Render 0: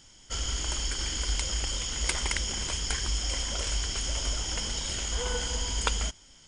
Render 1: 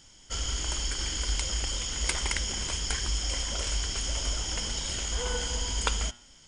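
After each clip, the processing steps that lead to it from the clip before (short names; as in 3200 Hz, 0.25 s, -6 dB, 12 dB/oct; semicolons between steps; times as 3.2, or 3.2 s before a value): de-hum 119.4 Hz, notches 36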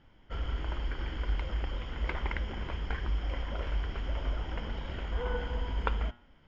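Bessel low-pass 1600 Hz, order 4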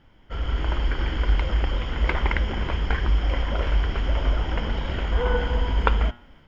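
AGC gain up to 6 dB; gain +4.5 dB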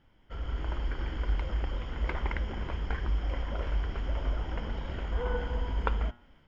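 dynamic EQ 3100 Hz, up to -4 dB, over -45 dBFS, Q 0.77; gain -8.5 dB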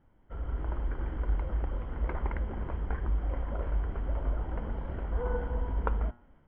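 LPF 1300 Hz 12 dB/oct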